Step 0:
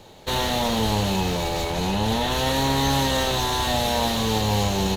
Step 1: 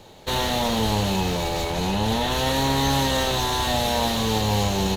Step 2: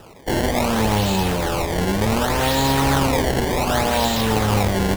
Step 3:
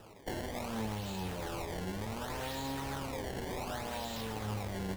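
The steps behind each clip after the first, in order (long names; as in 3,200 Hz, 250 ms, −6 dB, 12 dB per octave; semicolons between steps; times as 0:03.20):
no processing that can be heard
sample-and-hold swept by an LFO 20×, swing 160% 0.67 Hz; level +3.5 dB
downward compressor 6 to 1, threshold −25 dBFS, peak gain reduction 11 dB; flanger 1.3 Hz, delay 8.8 ms, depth 2.4 ms, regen +72%; level −6.5 dB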